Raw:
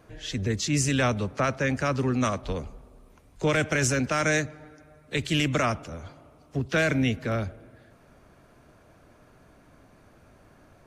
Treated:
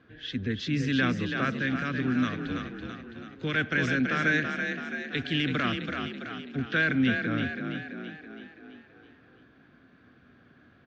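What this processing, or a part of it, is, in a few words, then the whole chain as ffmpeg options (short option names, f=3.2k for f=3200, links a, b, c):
frequency-shifting delay pedal into a guitar cabinet: -filter_complex "[0:a]asplit=8[a][b][c][d][e][f][g][h];[b]adelay=331,afreqshift=35,volume=-5.5dB[i];[c]adelay=662,afreqshift=70,volume=-10.9dB[j];[d]adelay=993,afreqshift=105,volume=-16.2dB[k];[e]adelay=1324,afreqshift=140,volume=-21.6dB[l];[f]adelay=1655,afreqshift=175,volume=-26.9dB[m];[g]adelay=1986,afreqshift=210,volume=-32.3dB[n];[h]adelay=2317,afreqshift=245,volume=-37.6dB[o];[a][i][j][k][l][m][n][o]amix=inputs=8:normalize=0,highpass=79,equalizer=f=250:t=q:w=4:g=8,equalizer=f=610:t=q:w=4:g=-8,equalizer=f=900:t=q:w=4:g=-9,equalizer=f=1.6k:t=q:w=4:g=9,equalizer=f=3.4k:t=q:w=4:g=6,lowpass=f=4.2k:w=0.5412,lowpass=f=4.2k:w=1.3066,asettb=1/sr,asplit=3[p][q][r];[p]atrim=end=1.594[s];[q]atrim=start=1.59:end=3.56,asetpts=PTS-STARTPTS,afade=t=in:d=0.004:c=qsin,afade=t=out:st=1.966:d=0.004:c=qsin,equalizer=f=660:t=o:w=2.4:g=-4[t];[r]atrim=start=3.556[u];[s][t]acrossfade=d=0.004:c1=hsin:c2=qsin[v];[v][u]acrossfade=d=0.004:c1=qsin:c2=hsin,volume=-5dB"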